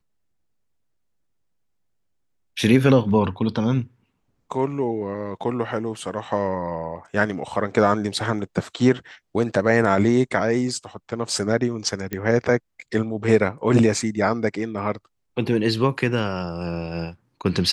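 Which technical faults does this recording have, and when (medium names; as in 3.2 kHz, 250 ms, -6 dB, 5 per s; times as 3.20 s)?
12.13 s: pop -13 dBFS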